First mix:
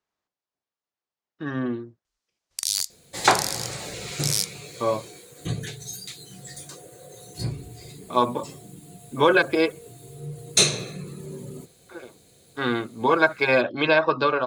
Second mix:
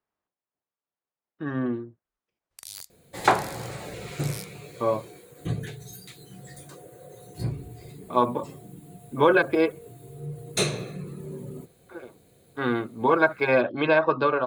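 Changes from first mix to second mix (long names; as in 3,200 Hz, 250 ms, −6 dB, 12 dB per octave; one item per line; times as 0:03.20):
first sound −6.5 dB
master: add parametric band 5,800 Hz −12.5 dB 1.9 octaves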